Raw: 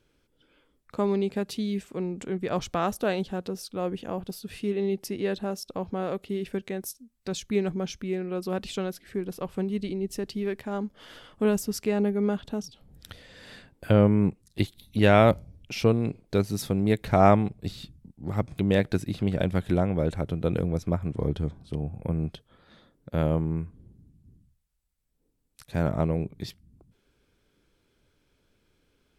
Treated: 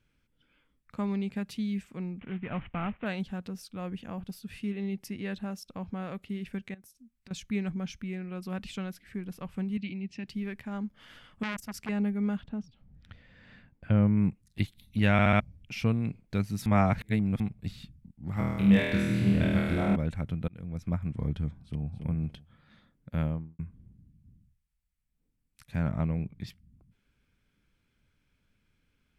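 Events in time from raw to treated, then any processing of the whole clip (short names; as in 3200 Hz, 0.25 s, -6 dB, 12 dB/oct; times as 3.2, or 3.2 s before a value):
2.19–3.06 CVSD 16 kbps
6.74–7.31 compressor 10:1, threshold -44 dBFS
9.77–10.28 speaker cabinet 130–5300 Hz, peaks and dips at 450 Hz -10 dB, 1200 Hz -9 dB, 2500 Hz +10 dB
11.43–11.89 core saturation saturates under 2200 Hz
12.43–14.17 tape spacing loss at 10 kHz 23 dB
15.12 stutter in place 0.07 s, 4 plays
16.66–17.4 reverse
18.34–19.96 flutter echo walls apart 4.3 m, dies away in 1.5 s
20.48–20.95 fade in
21.59–22.02 echo throw 0.28 s, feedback 20%, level -7.5 dB
23.16–23.59 studio fade out
25.76–26.47 high shelf 8800 Hz -10.5 dB
whole clip: EQ curve 220 Hz 0 dB, 380 Hz -12 dB, 2300 Hz +1 dB, 3800 Hz -6 dB; gain -2 dB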